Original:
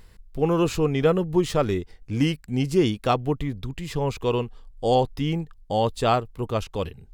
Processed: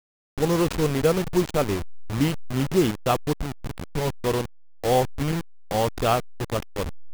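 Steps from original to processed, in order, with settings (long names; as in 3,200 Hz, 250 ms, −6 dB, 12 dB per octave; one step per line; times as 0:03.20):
hold until the input has moved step −23 dBFS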